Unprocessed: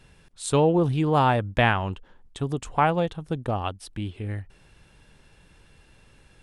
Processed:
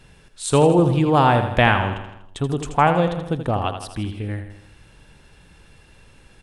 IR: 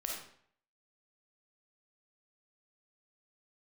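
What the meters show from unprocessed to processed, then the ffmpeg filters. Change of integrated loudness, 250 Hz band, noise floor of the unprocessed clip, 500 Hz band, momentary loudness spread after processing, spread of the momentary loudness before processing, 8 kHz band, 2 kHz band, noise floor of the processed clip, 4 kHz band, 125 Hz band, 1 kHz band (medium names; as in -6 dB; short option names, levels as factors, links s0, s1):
+5.0 dB, +5.5 dB, -57 dBFS, +5.0 dB, 14 LU, 14 LU, +5.0 dB, +5.5 dB, -51 dBFS, +5.0 dB, +5.0 dB, +5.0 dB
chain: -af "aecho=1:1:81|162|243|324|405|486:0.355|0.192|0.103|0.0559|0.0302|0.0163,volume=1.68"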